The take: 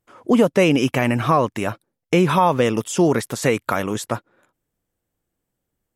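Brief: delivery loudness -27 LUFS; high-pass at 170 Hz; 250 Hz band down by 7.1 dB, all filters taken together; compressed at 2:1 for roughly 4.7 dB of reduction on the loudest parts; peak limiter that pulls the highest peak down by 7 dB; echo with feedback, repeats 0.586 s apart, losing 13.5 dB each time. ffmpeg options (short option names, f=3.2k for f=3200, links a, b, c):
-af "highpass=170,equalizer=f=250:t=o:g=-8.5,acompressor=threshold=-21dB:ratio=2,alimiter=limit=-15dB:level=0:latency=1,aecho=1:1:586|1172:0.211|0.0444,volume=0.5dB"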